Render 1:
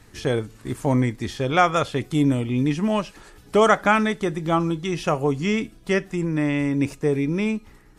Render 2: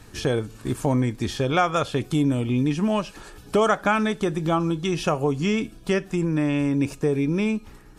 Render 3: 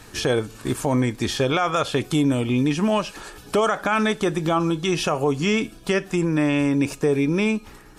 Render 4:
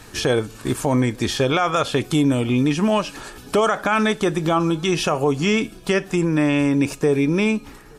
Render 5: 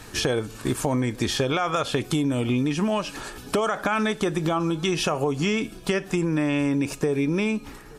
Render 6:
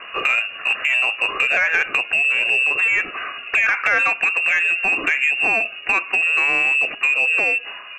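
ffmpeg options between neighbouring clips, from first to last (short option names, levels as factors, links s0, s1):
-af "bandreject=f=2000:w=7.9,acompressor=threshold=0.0501:ratio=2,volume=1.58"
-af "lowshelf=f=280:g=-7.5,alimiter=limit=0.133:level=0:latency=1:release=37,volume=2"
-filter_complex "[0:a]asplit=2[s0][s1];[s1]adelay=874.6,volume=0.0355,highshelf=f=4000:g=-19.7[s2];[s0][s2]amix=inputs=2:normalize=0,volume=1.26"
-af "acompressor=threshold=0.1:ratio=6"
-filter_complex "[0:a]lowpass=f=2500:t=q:w=0.5098,lowpass=f=2500:t=q:w=0.6013,lowpass=f=2500:t=q:w=0.9,lowpass=f=2500:t=q:w=2.563,afreqshift=-2900,asplit=2[s0][s1];[s1]highpass=f=720:p=1,volume=3.98,asoftclip=type=tanh:threshold=0.355[s2];[s0][s2]amix=inputs=2:normalize=0,lowpass=f=1400:p=1,volume=0.501,volume=2"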